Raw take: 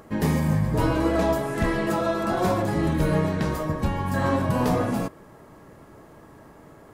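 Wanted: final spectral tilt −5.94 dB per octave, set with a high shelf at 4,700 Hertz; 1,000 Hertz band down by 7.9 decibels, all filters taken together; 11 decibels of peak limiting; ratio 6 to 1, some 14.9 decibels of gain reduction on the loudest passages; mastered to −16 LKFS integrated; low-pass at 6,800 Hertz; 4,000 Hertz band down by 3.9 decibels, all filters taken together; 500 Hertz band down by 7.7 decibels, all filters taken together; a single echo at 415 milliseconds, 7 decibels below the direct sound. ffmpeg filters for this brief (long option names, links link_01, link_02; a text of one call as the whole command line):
ffmpeg -i in.wav -af "lowpass=6800,equalizer=frequency=500:width_type=o:gain=-8,equalizer=frequency=1000:width_type=o:gain=-7.5,equalizer=frequency=4000:width_type=o:gain=-7,highshelf=frequency=4700:gain=6,acompressor=threshold=-36dB:ratio=6,alimiter=level_in=13dB:limit=-24dB:level=0:latency=1,volume=-13dB,aecho=1:1:415:0.447,volume=29.5dB" out.wav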